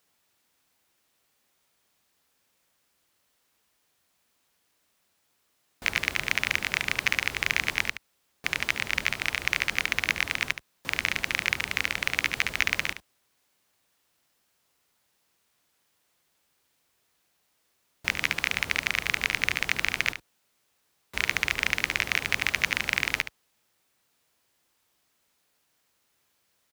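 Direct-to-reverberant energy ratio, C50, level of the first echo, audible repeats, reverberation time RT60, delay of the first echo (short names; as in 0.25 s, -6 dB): none, none, -11.0 dB, 1, none, 72 ms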